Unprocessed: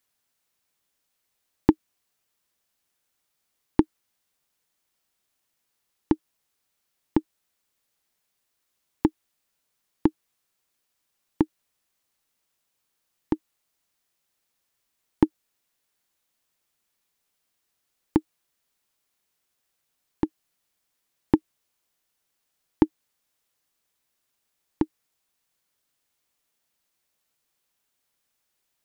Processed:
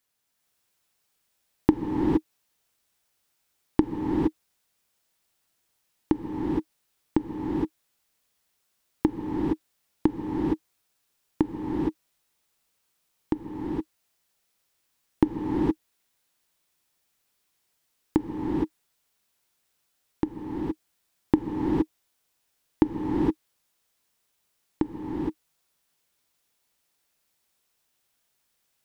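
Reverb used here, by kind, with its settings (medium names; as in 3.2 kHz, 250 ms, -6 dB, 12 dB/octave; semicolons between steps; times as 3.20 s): gated-style reverb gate 490 ms rising, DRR -2.5 dB; trim -1.5 dB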